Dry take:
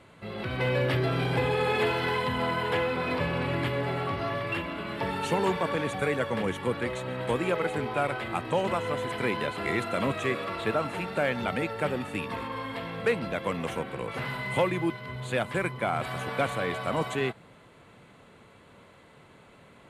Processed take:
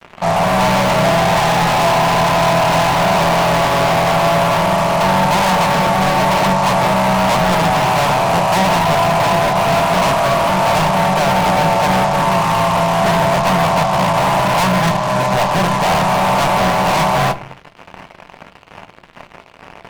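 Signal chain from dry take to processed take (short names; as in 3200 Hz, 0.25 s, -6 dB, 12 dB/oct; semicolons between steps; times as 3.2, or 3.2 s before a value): spectral limiter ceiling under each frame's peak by 16 dB; elliptic band-pass 140–1000 Hz; FFT band-reject 200–540 Hz; fuzz box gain 49 dB, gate -57 dBFS; on a send: reverb RT60 0.30 s, pre-delay 4 ms, DRR 9 dB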